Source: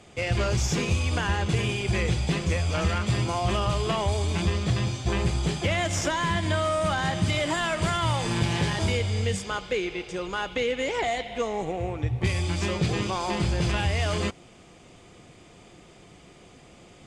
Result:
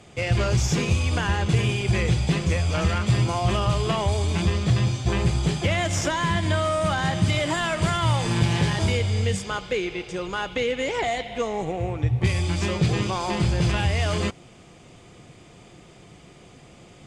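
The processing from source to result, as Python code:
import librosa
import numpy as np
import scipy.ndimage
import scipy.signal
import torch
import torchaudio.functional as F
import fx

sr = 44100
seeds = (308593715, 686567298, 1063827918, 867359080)

y = fx.peak_eq(x, sr, hz=130.0, db=4.5, octaves=0.8)
y = y * librosa.db_to_amplitude(1.5)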